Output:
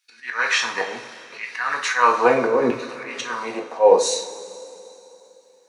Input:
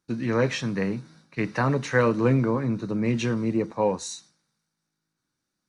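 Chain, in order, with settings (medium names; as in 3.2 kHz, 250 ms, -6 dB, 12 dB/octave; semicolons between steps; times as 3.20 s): LFO high-pass saw down 0.74 Hz 390–2500 Hz; slow attack 170 ms; two-slope reverb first 0.36 s, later 3.2 s, from -18 dB, DRR 0 dB; trim +7.5 dB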